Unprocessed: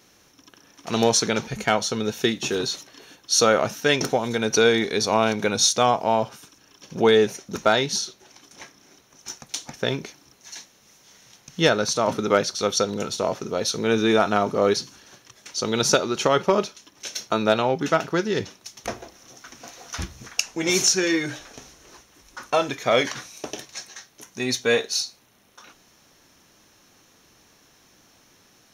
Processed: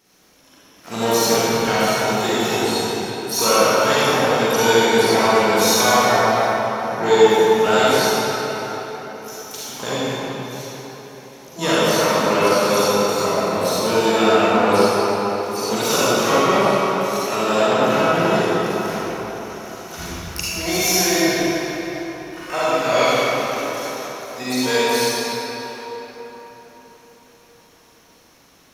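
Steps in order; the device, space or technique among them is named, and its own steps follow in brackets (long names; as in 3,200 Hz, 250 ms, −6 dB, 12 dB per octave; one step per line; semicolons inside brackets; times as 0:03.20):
shimmer-style reverb (pitch-shifted copies added +12 semitones −6 dB; convolution reverb RT60 4.5 s, pre-delay 37 ms, DRR −10.5 dB)
level −6.5 dB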